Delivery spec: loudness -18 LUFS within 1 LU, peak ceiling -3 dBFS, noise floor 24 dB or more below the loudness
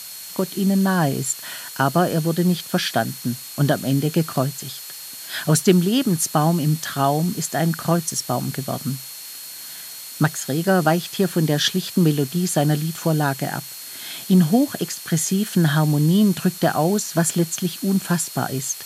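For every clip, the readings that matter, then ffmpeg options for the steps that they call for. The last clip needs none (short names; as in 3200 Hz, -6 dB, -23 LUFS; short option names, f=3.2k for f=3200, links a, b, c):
steady tone 4300 Hz; tone level -41 dBFS; noise floor -36 dBFS; noise floor target -45 dBFS; loudness -21.0 LUFS; peak -2.5 dBFS; loudness target -18.0 LUFS
-> -af "bandreject=f=4.3k:w=30"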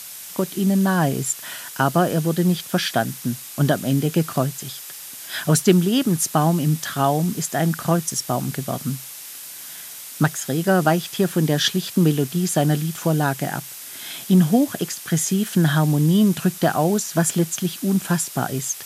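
steady tone none; noise floor -37 dBFS; noise floor target -45 dBFS
-> -af "afftdn=nr=8:nf=-37"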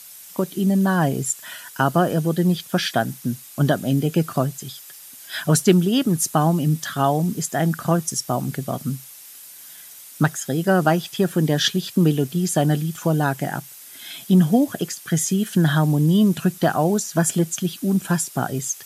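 noise floor -42 dBFS; noise floor target -45 dBFS
-> -af "afftdn=nr=6:nf=-42"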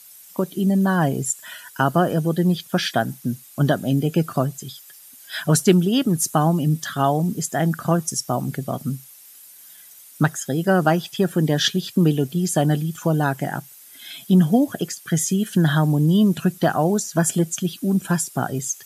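noise floor -46 dBFS; loudness -21.0 LUFS; peak -2.5 dBFS; loudness target -18.0 LUFS
-> -af "volume=3dB,alimiter=limit=-3dB:level=0:latency=1"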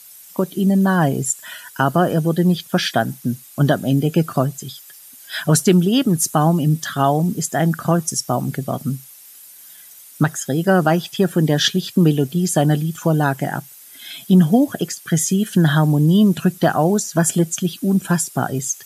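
loudness -18.0 LUFS; peak -3.0 dBFS; noise floor -43 dBFS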